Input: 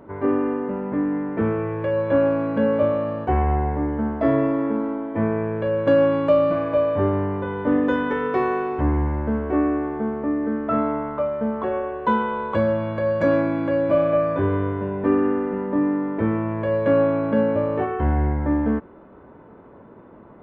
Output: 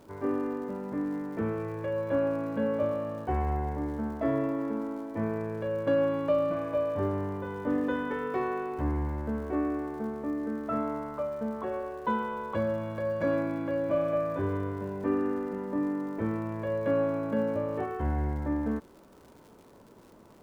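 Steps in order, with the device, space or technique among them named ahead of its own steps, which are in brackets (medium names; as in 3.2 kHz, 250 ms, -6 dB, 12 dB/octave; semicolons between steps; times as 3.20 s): vinyl LP (crackle 120 per s -38 dBFS; pink noise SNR 38 dB); trim -9 dB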